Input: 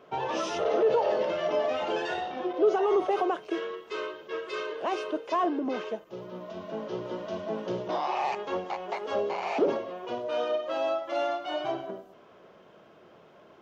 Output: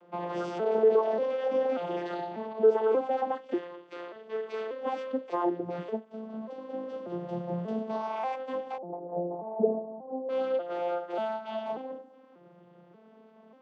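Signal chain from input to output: vocoder on a broken chord major triad, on F3, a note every 588 ms; 3.58–4.16 s: bass shelf 460 Hz -7.5 dB; 8.78–10.29 s: Chebyshev band-pass 160–790 Hz, order 3

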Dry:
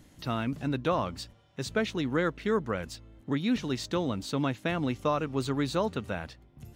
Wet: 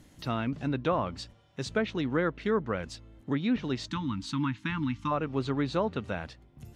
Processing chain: low-pass that closes with the level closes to 2.4 kHz, closed at -23.5 dBFS; time-frequency box 3.87–5.11 s, 330–860 Hz -28 dB

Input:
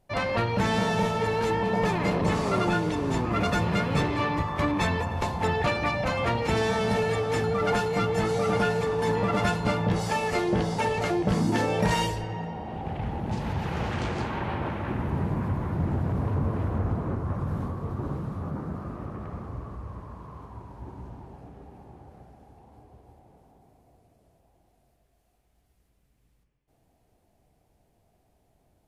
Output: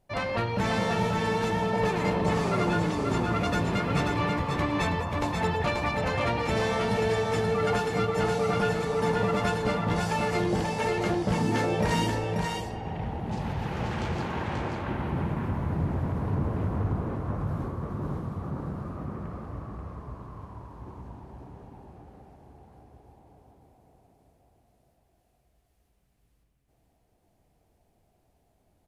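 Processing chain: delay 535 ms -4 dB; trim -2.5 dB

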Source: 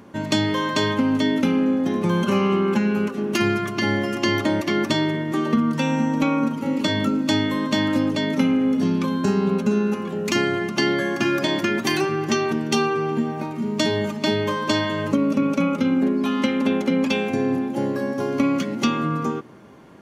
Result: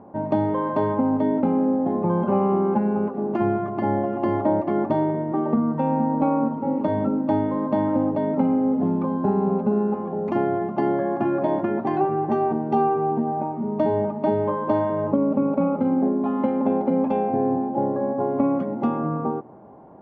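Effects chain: resonant low-pass 780 Hz, resonance Q 3.7; trim -2.5 dB

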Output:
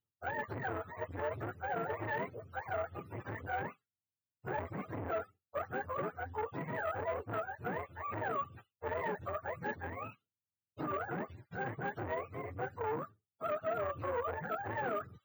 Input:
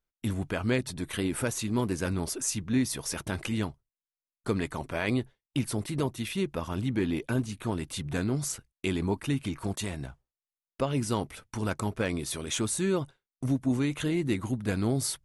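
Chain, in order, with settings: spectrum inverted on a logarithmic axis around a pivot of 410 Hz; peak limiter -25.5 dBFS, peak gain reduction 9 dB; tone controls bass -3 dB, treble -14 dB; careless resampling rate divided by 2×, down none, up hold; transformer saturation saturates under 730 Hz

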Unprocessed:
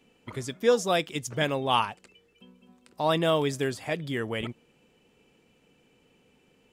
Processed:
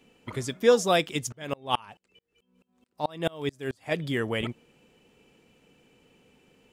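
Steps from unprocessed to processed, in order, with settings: 1.32–3.92 s: sawtooth tremolo in dB swelling 4.6 Hz, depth 33 dB; trim +2.5 dB

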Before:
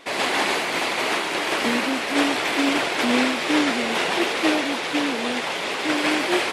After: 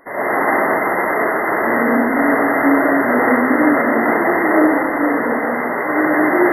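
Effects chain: algorithmic reverb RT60 1.7 s, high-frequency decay 0.95×, pre-delay 25 ms, DRR -8 dB; FFT band-reject 2.1–11 kHz

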